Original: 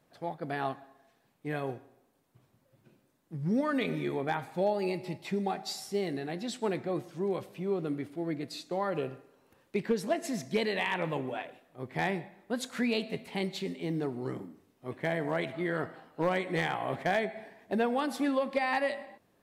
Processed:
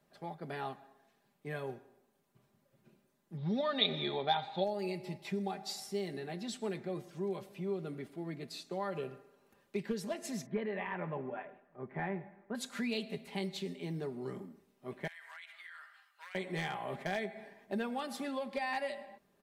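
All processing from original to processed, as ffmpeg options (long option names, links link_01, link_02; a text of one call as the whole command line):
ffmpeg -i in.wav -filter_complex "[0:a]asettb=1/sr,asplit=3[link_01][link_02][link_03];[link_01]atrim=end=3.374[link_04];[link_02]atrim=start=3.37:end=4.64,asetpts=PTS-STARTPTS,afade=type=in:duration=0.004:curve=qsin,afade=type=out:start_time=1.266:duration=0.004:curve=qsin,lowpass=frequency=3700:width_type=q:width=13,equalizer=frequency=760:width_type=o:width=0.89:gain=11.5[link_05];[link_03]atrim=start=4.636[link_06];[link_04][link_05]acrossfade=duration=0.004:curve1=hsin:curve2=qsin[link_07];[link_07][link_06]acrossfade=duration=0.004:curve1=qsin:curve2=hsin,asettb=1/sr,asplit=3[link_08][link_09][link_10];[link_08]atrim=end=10.464[link_11];[link_09]atrim=start=10.46:end=12.55,asetpts=PTS-STARTPTS,afade=type=in:duration=0.004:curve=qsin,afade=type=out:start_time=2.086:duration=0.004:curve=qsin,lowpass=frequency=1800:width=0.5412,lowpass=frequency=1800:width=1.3066,aemphasis=mode=production:type=75kf[link_12];[link_10]atrim=start=12.546[link_13];[link_11][link_12]acrossfade=duration=0.004:curve1=hsin:curve2=qsin[link_14];[link_14][link_13]acrossfade=duration=0.004:curve1=qsin:curve2=hsin,asettb=1/sr,asplit=3[link_15][link_16][link_17];[link_15]atrim=end=15.074[link_18];[link_16]atrim=start=15.07:end=16.35,asetpts=PTS-STARTPTS,afade=type=in:duration=0.004:curve=qsin,afade=type=out:start_time=1.276:duration=0.004:curve=qsin,highpass=frequency=1400:width=0.5412,highpass=frequency=1400:width=1.3066,acompressor=threshold=-42dB:ratio=10:attack=3.2:release=140:knee=1:detection=peak[link_19];[link_17]atrim=start=16.346[link_20];[link_18][link_19]acrossfade=duration=0.004:curve1=hsin:curve2=qsin[link_21];[link_21][link_20]acrossfade=duration=0.004:curve1=qsin:curve2=hsin,aecho=1:1:5:0.56,acrossover=split=130|3000[link_22][link_23][link_24];[link_23]acompressor=threshold=-37dB:ratio=1.5[link_25];[link_22][link_25][link_24]amix=inputs=3:normalize=0,volume=-4.5dB" out.wav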